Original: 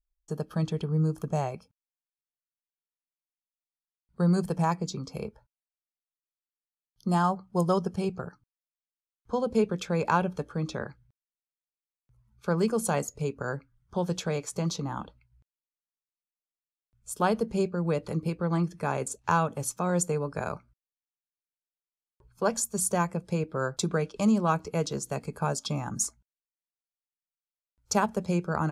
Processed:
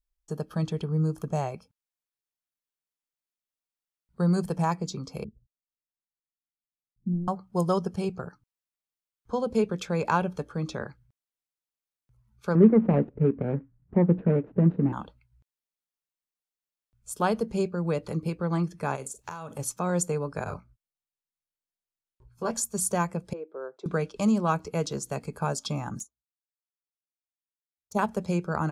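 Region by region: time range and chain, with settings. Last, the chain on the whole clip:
5.24–7.28 self-modulated delay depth 0.38 ms + inverse Chebyshev low-pass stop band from 960 Hz, stop band 60 dB
12.55–14.93 median filter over 41 samples + LPF 2300 Hz 24 dB/oct + bell 250 Hz +12.5 dB 2 oct
18.95–19.59 high shelf 6900 Hz +12 dB + compressor 16:1, threshold -33 dBFS + doubler 45 ms -13 dB
20.44–22.51 low shelf 180 Hz +9.5 dB + detuned doubles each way 23 cents
23.33–23.86 ladder high-pass 340 Hz, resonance 50% + tape spacing loss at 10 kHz 34 dB
25.99–27.99 bell 2700 Hz -14.5 dB 0.56 oct + envelope flanger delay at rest 11.1 ms, full sweep at -30 dBFS + upward expander 2.5:1, over -44 dBFS
whole clip: dry

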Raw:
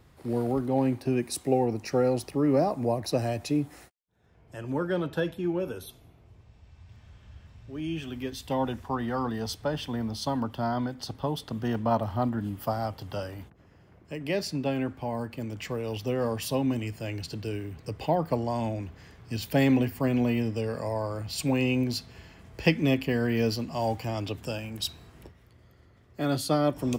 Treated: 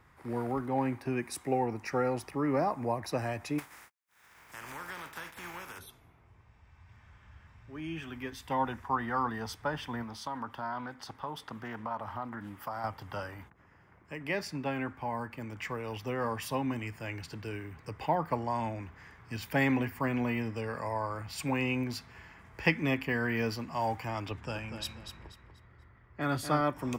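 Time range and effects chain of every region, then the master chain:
3.58–5.78 spectral contrast lowered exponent 0.38 + compressor 4:1, threshold -40 dBFS + mismatched tape noise reduction encoder only
10.03–12.84 low shelf 200 Hz -8 dB + compressor 5:1, threshold -31 dBFS + Doppler distortion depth 0.14 ms
24.31–26.61 low-pass opened by the level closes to 2900 Hz, open at -27 dBFS + low shelf 72 Hz +12 dB + feedback echo 0.242 s, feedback 31%, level -8.5 dB
whole clip: band shelf 1400 Hz +10 dB; notch 4200 Hz, Q 14; gain -6.5 dB

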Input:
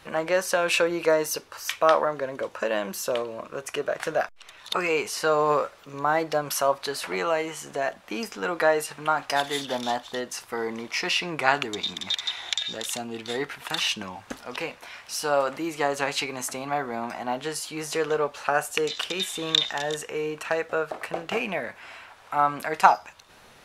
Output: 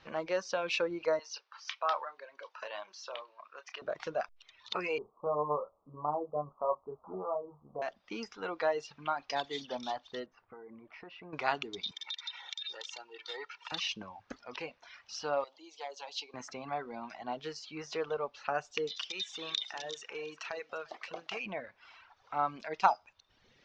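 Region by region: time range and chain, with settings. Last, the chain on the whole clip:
1.19–3.82 Chebyshev band-pass 890–5200 Hz + doubler 29 ms -10 dB
4.98–7.82 steep low-pass 1200 Hz 96 dB/oct + dynamic EQ 290 Hz, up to -4 dB, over -37 dBFS, Q 0.97 + doubler 27 ms -5.5 dB
10.26–11.33 LPF 1300 Hz + notch 1000 Hz, Q 18 + compressor 3:1, threshold -39 dBFS
11.91–13.72 HPF 740 Hz + comb 2.2 ms, depth 74% + compressor, threshold -26 dBFS
15.44–16.34 HPF 770 Hz + band shelf 1700 Hz -14.5 dB 1.3 oct + core saturation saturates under 1800 Hz
18.96–21.46 tilt +3 dB/oct + compressor 2:1, threshold -26 dBFS + echo 0.348 s -14 dB
whole clip: reverb removal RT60 1.2 s; steep low-pass 6000 Hz 48 dB/oct; dynamic EQ 1700 Hz, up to -5 dB, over -44 dBFS, Q 3.1; gain -8.5 dB

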